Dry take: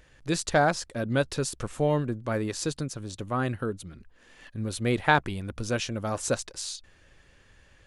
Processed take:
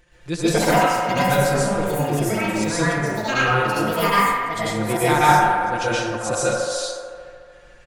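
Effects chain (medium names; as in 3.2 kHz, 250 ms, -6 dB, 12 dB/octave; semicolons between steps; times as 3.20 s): comb 5.7 ms, depth 78%; transient shaper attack -3 dB, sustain -7 dB; trance gate "xxxxxxx..xxx..x" 181 bpm -12 dB; on a send: feedback echo behind a band-pass 73 ms, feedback 80%, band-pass 830 Hz, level -4.5 dB; on the sum: plate-style reverb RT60 0.74 s, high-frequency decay 0.75×, pre-delay 110 ms, DRR -7 dB; ever faster or slower copies 215 ms, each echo +5 st, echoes 2; trim -1 dB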